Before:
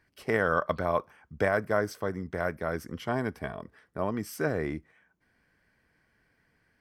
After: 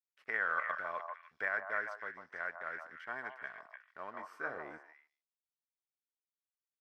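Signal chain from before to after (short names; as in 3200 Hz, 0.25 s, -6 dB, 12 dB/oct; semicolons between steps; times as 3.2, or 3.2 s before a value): crossover distortion -50.5 dBFS; delay with a stepping band-pass 0.149 s, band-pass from 850 Hz, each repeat 1.4 oct, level -2.5 dB; band-pass sweep 1700 Hz -> 560 Hz, 4.03–5.62; 4.15–4.58 doubler 22 ms -6 dB; gain -1.5 dB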